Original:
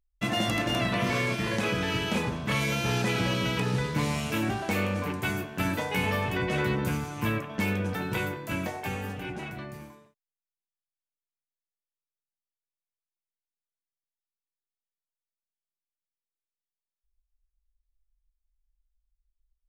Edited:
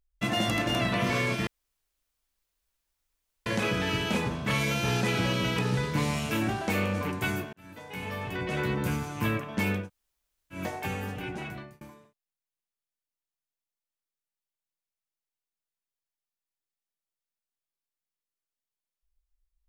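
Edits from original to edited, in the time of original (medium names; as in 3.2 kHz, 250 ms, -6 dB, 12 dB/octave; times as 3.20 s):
1.47 s: insert room tone 1.99 s
5.54–6.97 s: fade in
7.83–8.59 s: room tone, crossfade 0.16 s
9.53–9.82 s: fade out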